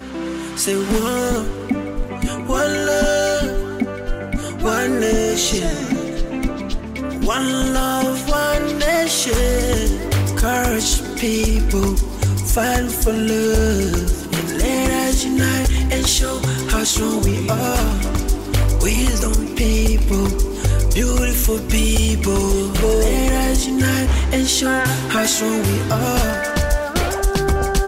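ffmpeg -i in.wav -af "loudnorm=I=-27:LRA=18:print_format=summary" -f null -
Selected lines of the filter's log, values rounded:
Input Integrated:    -18.7 LUFS
Input True Peak:      -6.8 dBTP
Input LRA:             2.9 LU
Input Threshold:     -28.7 LUFS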